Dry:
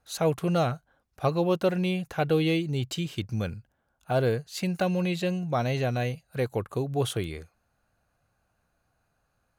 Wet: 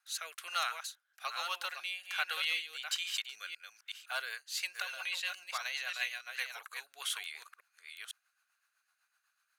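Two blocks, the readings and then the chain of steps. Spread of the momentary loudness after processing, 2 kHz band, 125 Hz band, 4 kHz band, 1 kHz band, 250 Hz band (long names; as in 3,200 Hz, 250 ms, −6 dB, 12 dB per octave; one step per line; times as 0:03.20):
13 LU, +1.0 dB, below −40 dB, +1.5 dB, −8.5 dB, below −40 dB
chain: delay that plays each chunk backwards 507 ms, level −6 dB
high-pass filter 1,300 Hz 24 dB per octave
rotating-speaker cabinet horn 1.2 Hz, later 8 Hz, at 0:03.69
level +3.5 dB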